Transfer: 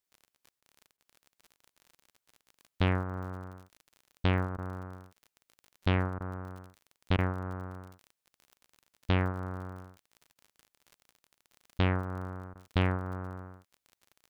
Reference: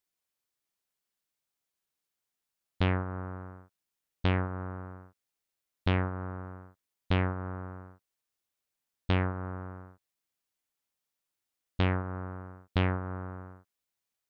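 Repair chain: de-click; interpolate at 0.61/0.97/3.78/4.57/6.19/7.17/10.34/12.54, 12 ms

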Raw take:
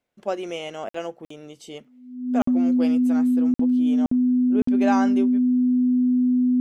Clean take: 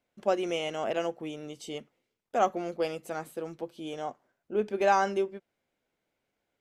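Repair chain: notch 250 Hz, Q 30; interpolate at 0.89/1.25/2.42/3.54/4.06/4.62, 54 ms

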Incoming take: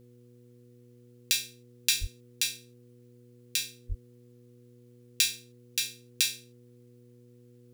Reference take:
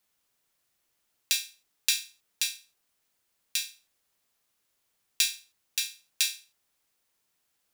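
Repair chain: de-hum 121.3 Hz, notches 4; 2–2.12 HPF 140 Hz 24 dB/oct; 3.88–4 HPF 140 Hz 24 dB/oct

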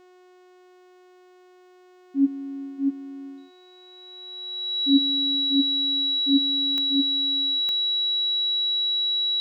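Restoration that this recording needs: de-click; de-hum 364.5 Hz, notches 22; notch 3900 Hz, Q 30; inverse comb 0.638 s -4 dB

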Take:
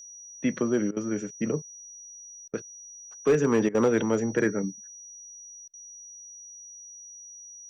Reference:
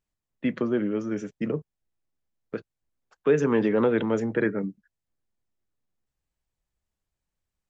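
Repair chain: clip repair -15 dBFS; notch 5800 Hz, Q 30; interpolate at 0.91/2.48/3.69/5.68, 55 ms

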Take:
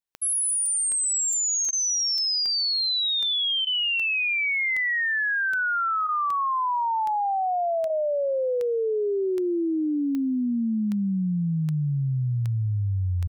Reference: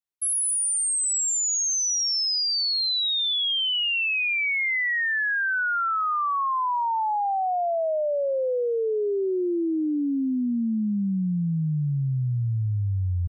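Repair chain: de-click; interpolate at 0.66/1.33/1.65/2.18, 2.2 ms; interpolate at 1.71/3.65/6.07/7.88, 17 ms

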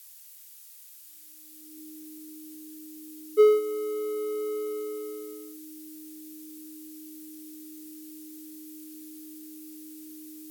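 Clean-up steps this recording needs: notch 310 Hz, Q 30; noise print and reduce 30 dB

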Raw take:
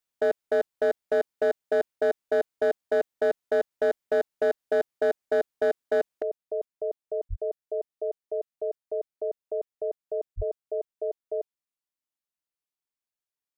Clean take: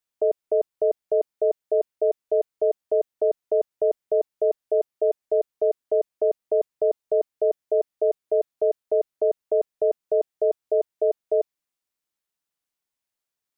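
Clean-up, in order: clip repair -18.5 dBFS; 6.22 gain correction +9 dB; 7.29–7.41 HPF 140 Hz 24 dB/oct; 10.36–10.48 HPF 140 Hz 24 dB/oct

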